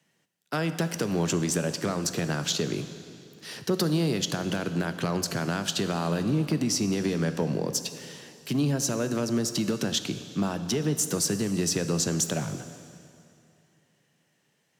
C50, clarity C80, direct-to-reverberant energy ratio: 10.5 dB, 11.5 dB, 9.5 dB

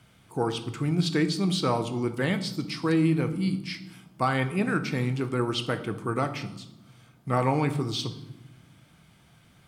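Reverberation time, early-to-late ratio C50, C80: 0.95 s, 12.5 dB, 15.5 dB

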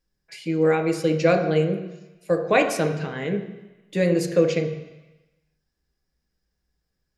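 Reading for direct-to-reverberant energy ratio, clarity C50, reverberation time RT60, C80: 4.0 dB, 8.0 dB, 1.0 s, 10.5 dB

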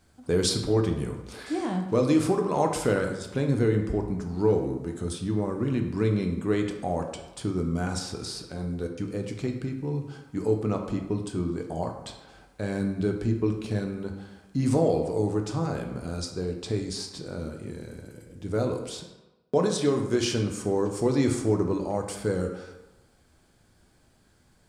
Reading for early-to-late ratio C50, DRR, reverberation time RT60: 7.0 dB, 3.0 dB, 1.1 s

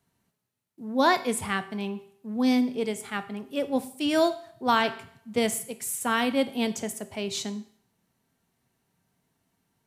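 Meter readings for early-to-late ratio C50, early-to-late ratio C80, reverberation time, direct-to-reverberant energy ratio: 14.5 dB, 18.0 dB, 0.60 s, 10.0 dB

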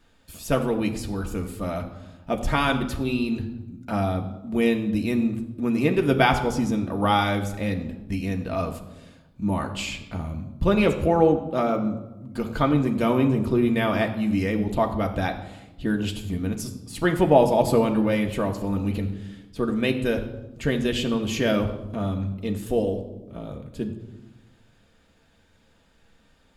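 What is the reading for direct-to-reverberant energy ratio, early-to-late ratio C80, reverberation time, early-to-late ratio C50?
2.5 dB, 12.0 dB, 1.0 s, 10.0 dB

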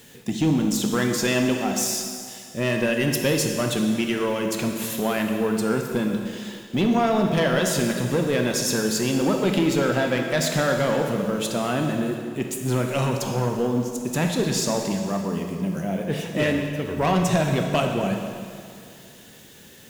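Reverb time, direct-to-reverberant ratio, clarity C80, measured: 2.4 s, 2.5 dB, 5.0 dB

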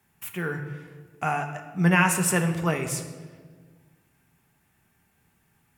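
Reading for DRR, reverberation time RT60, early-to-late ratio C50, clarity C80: 5.0 dB, 1.5 s, 8.5 dB, 10.5 dB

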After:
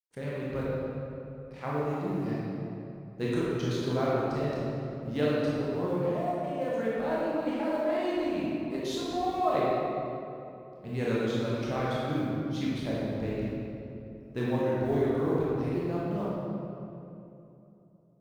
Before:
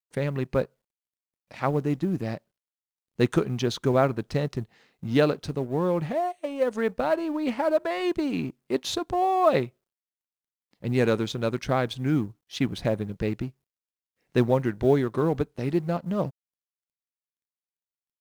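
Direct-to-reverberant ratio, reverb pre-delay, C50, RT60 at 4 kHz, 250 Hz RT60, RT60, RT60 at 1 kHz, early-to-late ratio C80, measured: -7.5 dB, 21 ms, -4.0 dB, 1.7 s, 3.4 s, 2.9 s, 2.7 s, -2.0 dB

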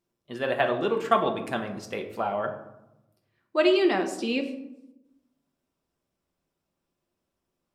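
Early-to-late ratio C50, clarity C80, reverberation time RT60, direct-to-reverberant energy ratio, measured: 9.5 dB, 12.0 dB, 0.90 s, 3.5 dB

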